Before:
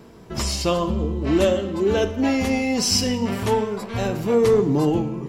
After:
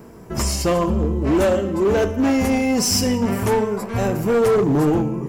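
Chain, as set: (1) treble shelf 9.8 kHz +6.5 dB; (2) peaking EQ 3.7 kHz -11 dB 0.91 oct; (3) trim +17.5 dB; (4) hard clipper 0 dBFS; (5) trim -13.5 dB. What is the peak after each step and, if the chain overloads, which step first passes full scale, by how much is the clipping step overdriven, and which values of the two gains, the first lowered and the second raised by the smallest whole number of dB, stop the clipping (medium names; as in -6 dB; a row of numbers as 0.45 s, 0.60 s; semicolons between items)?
-6.5 dBFS, -7.5 dBFS, +10.0 dBFS, 0.0 dBFS, -13.5 dBFS; step 3, 10.0 dB; step 3 +7.5 dB, step 5 -3.5 dB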